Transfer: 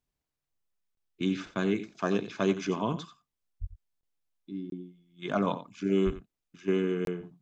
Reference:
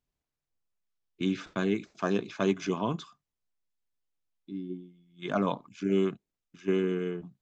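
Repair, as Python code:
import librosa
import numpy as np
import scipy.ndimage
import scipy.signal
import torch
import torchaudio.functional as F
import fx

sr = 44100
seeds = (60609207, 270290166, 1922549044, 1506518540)

y = fx.highpass(x, sr, hz=140.0, slope=24, at=(3.6, 3.72), fade=0.02)
y = fx.highpass(y, sr, hz=140.0, slope=24, at=(6.05, 6.17), fade=0.02)
y = fx.fix_interpolate(y, sr, at_s=(0.95, 4.01, 4.7, 7.05), length_ms=22.0)
y = fx.fix_echo_inverse(y, sr, delay_ms=89, level_db=-13.5)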